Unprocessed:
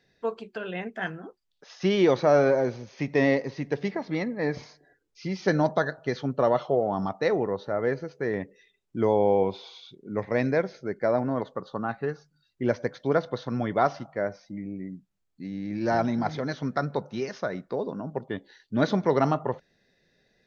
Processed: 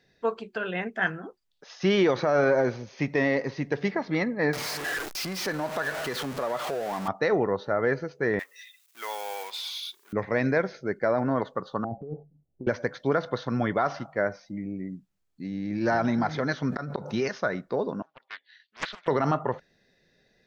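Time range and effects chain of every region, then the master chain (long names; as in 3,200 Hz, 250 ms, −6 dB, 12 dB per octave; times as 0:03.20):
0:04.53–0:07.08: converter with a step at zero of −28 dBFS + low-shelf EQ 180 Hz −11 dB + downward compressor 2.5 to 1, threshold −33 dBFS
0:08.39–0:10.13: mu-law and A-law mismatch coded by mu + high-pass filter 1,300 Hz + spectral tilt +3 dB per octave
0:11.84–0:12.67: Butterworth low-pass 750 Hz 48 dB per octave + compressor whose output falls as the input rises −37 dBFS
0:16.64–0:17.28: gate with flip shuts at −19 dBFS, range −31 dB + envelope flattener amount 70%
0:18.02–0:19.08: flat-topped band-pass 2,600 Hz, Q 1.1 + highs frequency-modulated by the lows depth 0.6 ms
whole clip: dynamic equaliser 1,500 Hz, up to +6 dB, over −43 dBFS, Q 1.2; brickwall limiter −15 dBFS; level +1.5 dB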